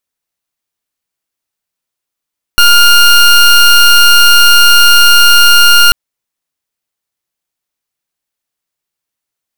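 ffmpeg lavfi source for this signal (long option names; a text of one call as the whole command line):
ffmpeg -f lavfi -i "aevalsrc='0.631*(2*lt(mod(1410*t,1),0.2)-1)':duration=3.34:sample_rate=44100" out.wav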